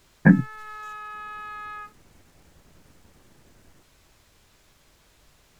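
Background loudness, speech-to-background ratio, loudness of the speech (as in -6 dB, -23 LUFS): -38.0 LUFS, 17.5 dB, -20.5 LUFS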